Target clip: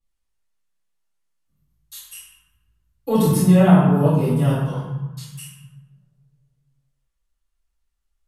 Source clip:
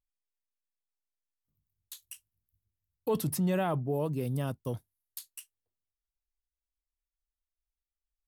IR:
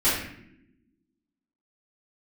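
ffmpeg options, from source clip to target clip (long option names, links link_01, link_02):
-filter_complex "[0:a]asettb=1/sr,asplit=3[link_01][link_02][link_03];[link_01]atrim=end=4.524[link_04];[link_02]atrim=start=4.52:end=5.3,asetpts=PTS-STARTPTS,afade=type=in:duration=0.004:curve=qsin,afade=type=out:start_time=0.776:duration=0.004:curve=qsin,highpass=680,lowpass=6800[link_05];[link_03]atrim=start=5.296[link_06];[link_04][link_05]acrossfade=duration=0.004:curve1=hsin:curve2=qsin[link_07];[link_07][link_06]acrossfade=duration=0.004:curve1=qsin:curve2=hsin[link_08];[1:a]atrim=start_sample=2205,asetrate=26901,aresample=44100[link_09];[link_08][link_09]afir=irnorm=-1:irlink=0,volume=-6dB"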